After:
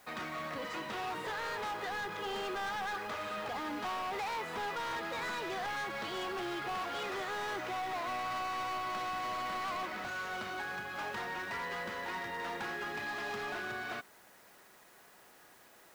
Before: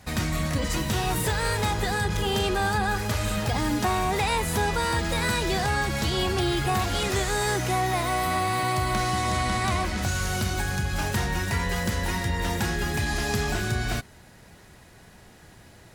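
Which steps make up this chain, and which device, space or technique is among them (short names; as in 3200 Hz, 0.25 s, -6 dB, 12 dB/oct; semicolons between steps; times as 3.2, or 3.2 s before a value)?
drive-through speaker (BPF 400–2800 Hz; bell 1200 Hz +5 dB 0.37 oct; hard clip -28 dBFS, distortion -8 dB; white noise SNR 25 dB); gain -6.5 dB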